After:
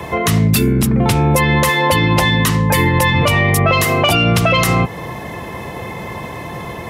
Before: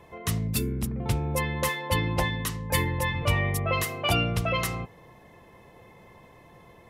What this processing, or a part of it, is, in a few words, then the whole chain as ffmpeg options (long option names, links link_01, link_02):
mastering chain: -filter_complex "[0:a]highpass=54,equalizer=frequency=490:width_type=o:width=0.77:gain=-2.5,acrossover=split=120|940|3400[link_01][link_02][link_03][link_04];[link_01]acompressor=threshold=-45dB:ratio=4[link_05];[link_02]acompressor=threshold=-33dB:ratio=4[link_06];[link_03]acompressor=threshold=-37dB:ratio=4[link_07];[link_04]acompressor=threshold=-38dB:ratio=4[link_08];[link_05][link_06][link_07][link_08]amix=inputs=4:normalize=0,acompressor=threshold=-40dB:ratio=1.5,asoftclip=type=tanh:threshold=-24.5dB,alimiter=level_in=29.5dB:limit=-1dB:release=50:level=0:latency=1,volume=-4dB"